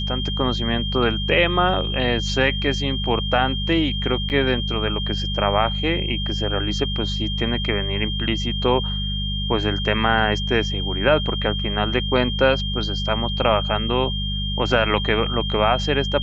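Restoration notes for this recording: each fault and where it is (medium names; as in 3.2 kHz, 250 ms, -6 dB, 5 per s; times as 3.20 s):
hum 50 Hz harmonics 4 -26 dBFS
whine 3.2 kHz -27 dBFS
4.29–4.30 s: dropout 9.2 ms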